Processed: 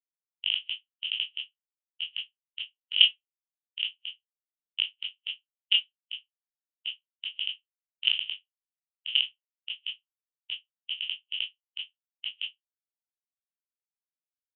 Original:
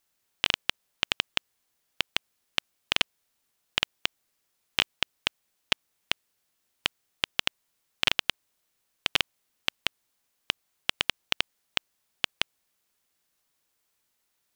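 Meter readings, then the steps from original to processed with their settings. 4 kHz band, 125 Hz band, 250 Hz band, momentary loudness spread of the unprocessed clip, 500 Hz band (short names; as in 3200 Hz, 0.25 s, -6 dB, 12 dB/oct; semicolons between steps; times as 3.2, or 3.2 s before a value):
+2.0 dB, under -20 dB, under -25 dB, 6 LU, under -30 dB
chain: spectral trails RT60 0.51 s; bell 90 Hz +4.5 dB 1.1 oct; spectral expander 4:1; gain -1 dB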